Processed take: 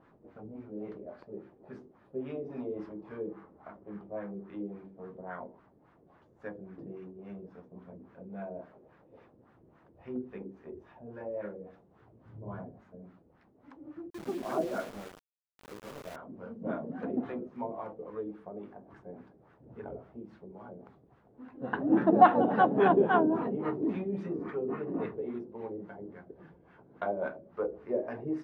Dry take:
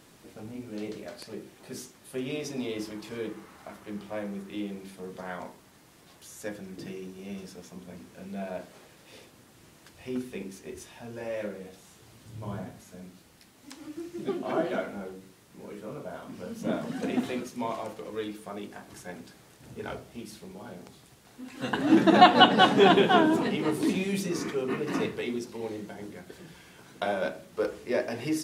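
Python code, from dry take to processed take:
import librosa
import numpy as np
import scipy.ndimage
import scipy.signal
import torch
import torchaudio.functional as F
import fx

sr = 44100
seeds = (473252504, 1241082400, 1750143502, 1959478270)

y = fx.filter_lfo_lowpass(x, sr, shape='sine', hz=3.6, low_hz=440.0, high_hz=1500.0, q=1.7)
y = fx.sample_gate(y, sr, floor_db=-36.5, at=(14.1, 16.16))
y = F.gain(torch.from_numpy(y), -6.0).numpy()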